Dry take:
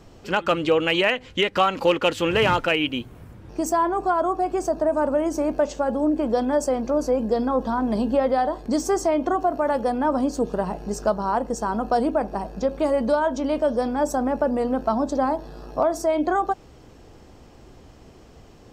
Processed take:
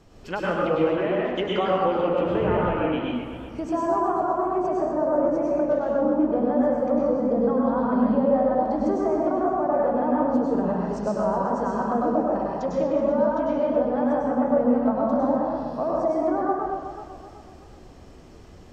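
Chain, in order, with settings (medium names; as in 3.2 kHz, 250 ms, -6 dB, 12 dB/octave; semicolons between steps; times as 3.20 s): low-pass that closes with the level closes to 1 kHz, closed at -17.5 dBFS; plate-style reverb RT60 1 s, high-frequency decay 0.8×, pre-delay 90 ms, DRR -4 dB; modulated delay 126 ms, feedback 72%, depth 158 cents, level -11 dB; trim -6 dB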